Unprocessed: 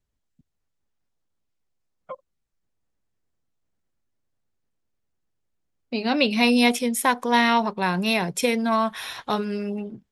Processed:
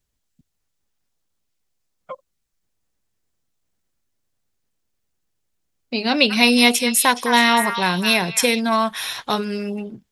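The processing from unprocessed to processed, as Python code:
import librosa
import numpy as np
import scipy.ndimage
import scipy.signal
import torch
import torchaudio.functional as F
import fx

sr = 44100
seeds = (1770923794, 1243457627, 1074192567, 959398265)

y = fx.high_shelf(x, sr, hz=2600.0, db=8.5)
y = fx.echo_stepped(y, sr, ms=209, hz=1500.0, octaves=1.4, feedback_pct=70, wet_db=-5, at=(6.29, 8.59), fade=0.02)
y = y * 10.0 ** (2.0 / 20.0)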